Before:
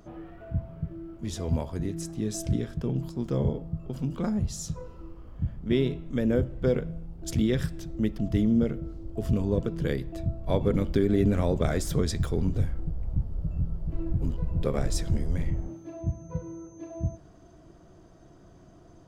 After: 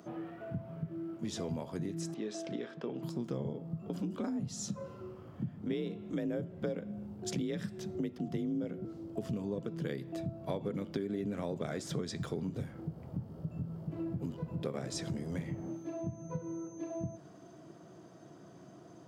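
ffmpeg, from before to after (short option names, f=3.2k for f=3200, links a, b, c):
-filter_complex "[0:a]asettb=1/sr,asplit=3[a][b][c];[a]atrim=end=2.144[d];[b]atrim=start=2.14:end=3.03,asetpts=PTS-STARTPTS,afade=t=in:d=0.004:c=qsin,afade=t=out:st=0.886:d=0.004:c=qsin,highpass=380,lowpass=3.7k[e];[c]atrim=start=3.026[f];[d][e]acrossfade=d=0.004:c1=hsin:c2=qsin[g];[g][f]acrossfade=d=0.004:c1=qsin:c2=hsin,asettb=1/sr,asplit=3[h][i][j];[h]atrim=end=3.824[k];[i]atrim=start=3.82:end=8.85,asetpts=PTS-STARTPTS,afade=t=in:d=0.004:c=qsin,afade=t=out:st=5.026:d=0.004:c=qsin,afreqshift=41[l];[j]atrim=start=8.846[m];[k][l]acrossfade=d=0.004:c1=hsin:c2=qsin[n];[n][m]acrossfade=d=0.004:c1=qsin:c2=hsin,acrossover=split=8100[o][p];[p]acompressor=threshold=-59dB:ratio=4:attack=1:release=60[q];[o][q]amix=inputs=2:normalize=0,highpass=f=130:w=0.5412,highpass=f=130:w=1.3066,acompressor=threshold=-35dB:ratio=5,volume=1dB"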